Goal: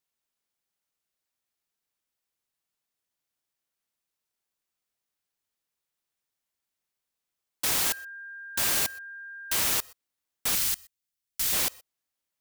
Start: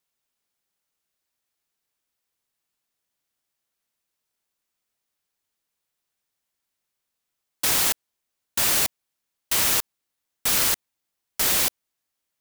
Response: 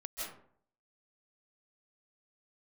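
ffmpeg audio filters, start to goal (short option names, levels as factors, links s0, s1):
-filter_complex "[0:a]asettb=1/sr,asplit=3[s0][s1][s2];[s0]atrim=end=10.554[s3];[s1]atrim=start=10.55:end=11.53,asetpts=PTS-STARTPTS,afade=t=in:d=0.004:c=qsin,afade=t=out:st=0.976:d=0.004:c=qsin,equalizer=f=560:w=0.39:g=-13.5[s4];[s2]atrim=start=11.526[s5];[s3][s4]acrossfade=d=0.004:c1=hsin:c2=qsin[s6];[s6][s5]acrossfade=d=0.004:c1=qsin:c2=hsin[s7];[1:a]atrim=start_sample=2205,afade=t=out:st=0.17:d=0.01,atrim=end_sample=7938[s8];[s7][s8]afir=irnorm=-1:irlink=0,asettb=1/sr,asplit=3[s9][s10][s11];[s9]atrim=end=7.854[s12];[s10]atrim=start=7.85:end=9.59,asetpts=PTS-STARTPTS,afade=t=in:d=0.004:c=qsin,afade=t=out:st=1.736:d=0.004:c=qsin,aeval=exprs='val(0)+0.01*sin(2*PI*1600*n/s)':c=same[s13];[s11]atrim=start=9.586[s14];[s12][s13]acrossfade=d=0.004:c1=hsin:c2=qsin[s15];[s15][s14]acrossfade=d=0.004:c1=qsin:c2=hsin,volume=1.12"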